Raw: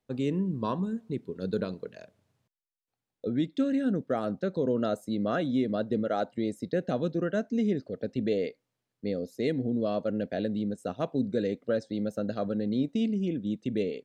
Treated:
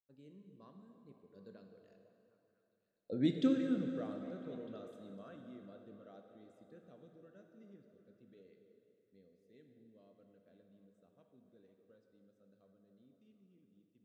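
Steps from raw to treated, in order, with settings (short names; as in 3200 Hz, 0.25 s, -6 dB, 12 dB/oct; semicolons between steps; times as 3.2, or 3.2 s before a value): Doppler pass-by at 3.36, 15 m/s, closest 1.4 m; on a send: delay with a stepping band-pass 0.251 s, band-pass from 410 Hz, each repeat 0.7 oct, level -8.5 dB; on the sum: plate-style reverb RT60 3 s, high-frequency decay 0.85×, DRR 4.5 dB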